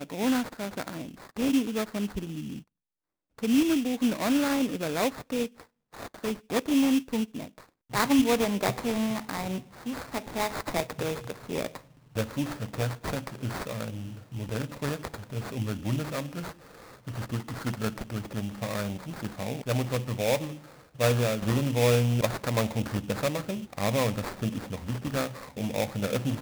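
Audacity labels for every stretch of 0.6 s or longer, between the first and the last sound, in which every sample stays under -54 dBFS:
2.630000	3.380000	silence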